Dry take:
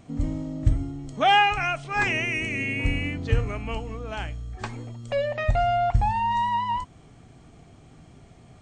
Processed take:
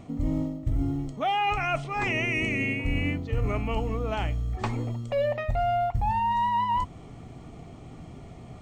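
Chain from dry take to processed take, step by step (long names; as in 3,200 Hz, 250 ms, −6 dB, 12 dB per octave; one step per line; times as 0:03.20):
high-shelf EQ 2,900 Hz −8 dB
mains-hum notches 50/100/150 Hz
reversed playback
downward compressor 8 to 1, threshold −30 dBFS, peak gain reduction 16 dB
reversed playback
notch filter 1,600 Hz, Q 6.1
floating-point word with a short mantissa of 6 bits
level +7 dB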